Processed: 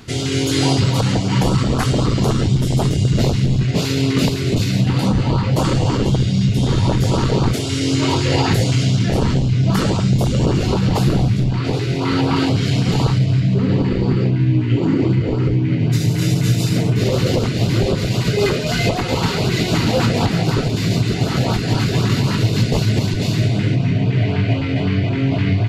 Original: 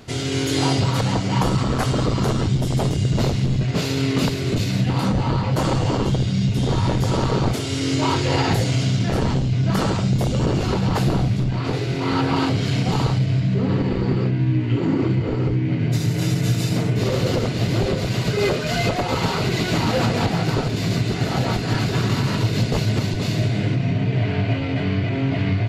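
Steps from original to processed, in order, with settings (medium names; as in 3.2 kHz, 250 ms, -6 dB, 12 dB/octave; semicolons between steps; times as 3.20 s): LFO notch saw up 3.9 Hz 500–2200 Hz; trim +4 dB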